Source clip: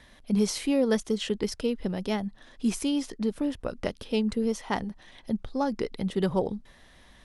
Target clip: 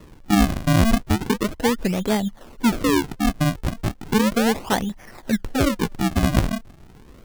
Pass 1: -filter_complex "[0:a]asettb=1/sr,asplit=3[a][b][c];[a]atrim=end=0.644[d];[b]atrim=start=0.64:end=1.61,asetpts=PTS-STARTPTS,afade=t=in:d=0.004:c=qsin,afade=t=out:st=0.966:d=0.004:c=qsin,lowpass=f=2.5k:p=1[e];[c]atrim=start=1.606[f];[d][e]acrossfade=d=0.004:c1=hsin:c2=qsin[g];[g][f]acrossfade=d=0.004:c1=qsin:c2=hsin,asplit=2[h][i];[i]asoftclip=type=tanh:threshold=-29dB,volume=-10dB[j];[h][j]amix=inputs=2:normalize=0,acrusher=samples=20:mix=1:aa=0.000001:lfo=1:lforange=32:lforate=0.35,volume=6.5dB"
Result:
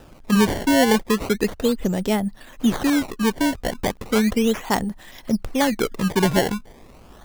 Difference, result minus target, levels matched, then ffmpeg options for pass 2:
decimation with a swept rate: distortion -12 dB
-filter_complex "[0:a]asettb=1/sr,asplit=3[a][b][c];[a]atrim=end=0.644[d];[b]atrim=start=0.64:end=1.61,asetpts=PTS-STARTPTS,afade=t=in:d=0.004:c=qsin,afade=t=out:st=0.966:d=0.004:c=qsin,lowpass=f=2.5k:p=1[e];[c]atrim=start=1.606[f];[d][e]acrossfade=d=0.004:c1=hsin:c2=qsin[g];[g][f]acrossfade=d=0.004:c1=qsin:c2=hsin,asplit=2[h][i];[i]asoftclip=type=tanh:threshold=-29dB,volume=-10dB[j];[h][j]amix=inputs=2:normalize=0,acrusher=samples=56:mix=1:aa=0.000001:lfo=1:lforange=89.6:lforate=0.35,volume=6.5dB"

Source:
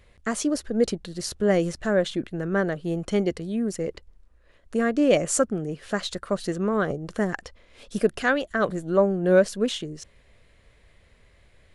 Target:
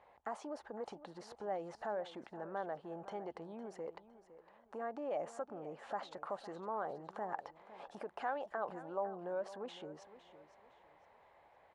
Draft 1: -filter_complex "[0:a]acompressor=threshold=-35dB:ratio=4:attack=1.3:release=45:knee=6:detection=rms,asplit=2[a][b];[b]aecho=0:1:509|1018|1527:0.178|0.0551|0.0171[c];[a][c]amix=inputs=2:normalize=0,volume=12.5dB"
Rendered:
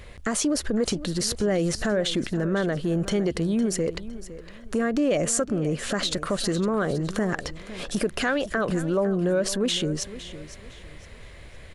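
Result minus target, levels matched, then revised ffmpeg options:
1000 Hz band -11.5 dB
-filter_complex "[0:a]acompressor=threshold=-35dB:ratio=4:attack=1.3:release=45:knee=6:detection=rms,bandpass=f=840:t=q:w=6.3:csg=0,asplit=2[a][b];[b]aecho=0:1:509|1018|1527:0.178|0.0551|0.0171[c];[a][c]amix=inputs=2:normalize=0,volume=12.5dB"

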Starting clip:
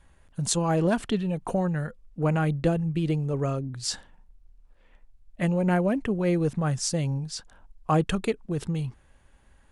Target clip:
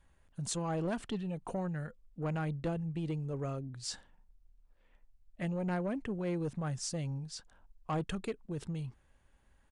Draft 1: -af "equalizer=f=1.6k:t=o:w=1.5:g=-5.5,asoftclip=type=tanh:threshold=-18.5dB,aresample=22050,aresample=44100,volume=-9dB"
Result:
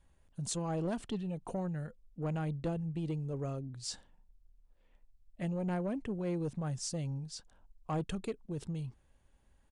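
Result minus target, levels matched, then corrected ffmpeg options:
2000 Hz band -4.0 dB
-af "asoftclip=type=tanh:threshold=-18.5dB,aresample=22050,aresample=44100,volume=-9dB"

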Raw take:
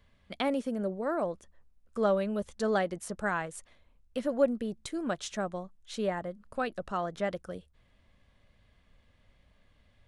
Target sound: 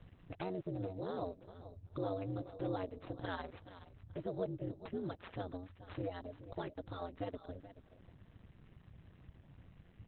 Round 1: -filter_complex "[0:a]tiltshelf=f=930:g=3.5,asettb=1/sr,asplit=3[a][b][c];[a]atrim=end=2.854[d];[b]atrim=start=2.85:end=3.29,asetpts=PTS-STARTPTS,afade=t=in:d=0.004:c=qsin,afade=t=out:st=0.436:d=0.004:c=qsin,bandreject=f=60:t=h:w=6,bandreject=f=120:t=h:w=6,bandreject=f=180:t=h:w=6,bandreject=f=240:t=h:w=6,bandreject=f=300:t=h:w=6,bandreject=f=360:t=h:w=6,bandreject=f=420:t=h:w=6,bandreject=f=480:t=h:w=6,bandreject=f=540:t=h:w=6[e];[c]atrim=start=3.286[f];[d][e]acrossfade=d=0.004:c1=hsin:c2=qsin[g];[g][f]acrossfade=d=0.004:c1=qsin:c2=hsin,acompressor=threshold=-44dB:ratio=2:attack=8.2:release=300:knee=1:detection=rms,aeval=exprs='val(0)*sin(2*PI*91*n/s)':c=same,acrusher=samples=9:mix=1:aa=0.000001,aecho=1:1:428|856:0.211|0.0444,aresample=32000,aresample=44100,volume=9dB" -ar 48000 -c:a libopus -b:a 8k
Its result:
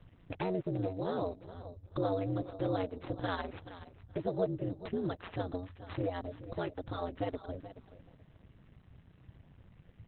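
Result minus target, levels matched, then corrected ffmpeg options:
compressor: peak gain reduction -5.5 dB
-filter_complex "[0:a]tiltshelf=f=930:g=3.5,asettb=1/sr,asplit=3[a][b][c];[a]atrim=end=2.854[d];[b]atrim=start=2.85:end=3.29,asetpts=PTS-STARTPTS,afade=t=in:d=0.004:c=qsin,afade=t=out:st=0.436:d=0.004:c=qsin,bandreject=f=60:t=h:w=6,bandreject=f=120:t=h:w=6,bandreject=f=180:t=h:w=6,bandreject=f=240:t=h:w=6,bandreject=f=300:t=h:w=6,bandreject=f=360:t=h:w=6,bandreject=f=420:t=h:w=6,bandreject=f=480:t=h:w=6,bandreject=f=540:t=h:w=6[e];[c]atrim=start=3.286[f];[d][e]acrossfade=d=0.004:c1=hsin:c2=qsin[g];[g][f]acrossfade=d=0.004:c1=qsin:c2=hsin,acompressor=threshold=-55.5dB:ratio=2:attack=8.2:release=300:knee=1:detection=rms,aeval=exprs='val(0)*sin(2*PI*91*n/s)':c=same,acrusher=samples=9:mix=1:aa=0.000001,aecho=1:1:428|856:0.211|0.0444,aresample=32000,aresample=44100,volume=9dB" -ar 48000 -c:a libopus -b:a 8k

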